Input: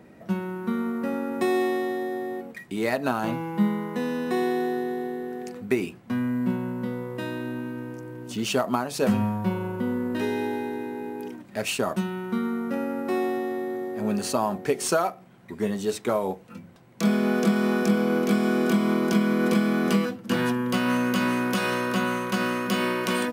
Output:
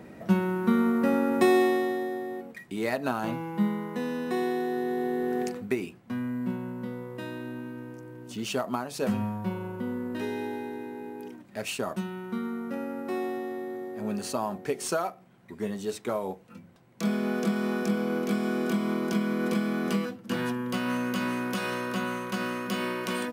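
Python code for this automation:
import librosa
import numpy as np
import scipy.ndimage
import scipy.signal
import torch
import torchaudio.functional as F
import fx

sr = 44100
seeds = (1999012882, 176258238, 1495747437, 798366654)

y = fx.gain(x, sr, db=fx.line((1.35, 4.0), (2.25, -3.5), (4.66, -3.5), (5.42, 6.5), (5.76, -5.5)))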